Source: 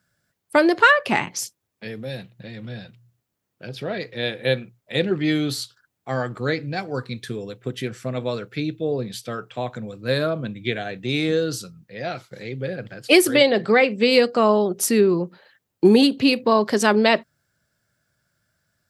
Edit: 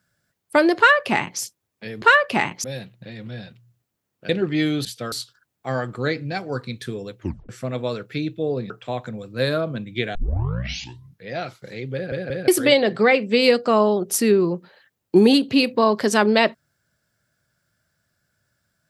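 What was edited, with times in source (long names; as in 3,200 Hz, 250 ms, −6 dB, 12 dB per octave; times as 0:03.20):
0:00.78–0:01.40: duplicate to 0:02.02
0:03.67–0:04.98: remove
0:07.61: tape stop 0.30 s
0:09.12–0:09.39: move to 0:05.54
0:10.84: tape start 1.13 s
0:12.63: stutter in place 0.18 s, 3 plays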